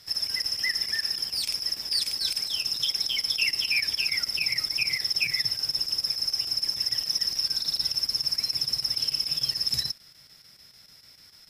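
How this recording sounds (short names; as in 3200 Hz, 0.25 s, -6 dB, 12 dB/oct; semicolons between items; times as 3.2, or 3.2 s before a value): chopped level 6.8 Hz, depth 60%, duty 85%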